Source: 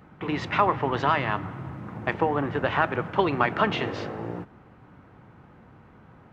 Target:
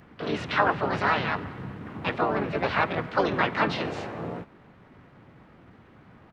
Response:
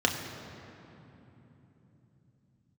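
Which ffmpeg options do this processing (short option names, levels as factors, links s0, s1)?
-filter_complex "[0:a]acrossover=split=3800[s0][s1];[s1]acompressor=threshold=0.00251:ratio=4:attack=1:release=60[s2];[s0][s2]amix=inputs=2:normalize=0,asplit=4[s3][s4][s5][s6];[s4]asetrate=33038,aresample=44100,atempo=1.33484,volume=0.562[s7];[s5]asetrate=58866,aresample=44100,atempo=0.749154,volume=0.794[s8];[s6]asetrate=66075,aresample=44100,atempo=0.66742,volume=0.794[s9];[s3][s7][s8][s9]amix=inputs=4:normalize=0,volume=0.562"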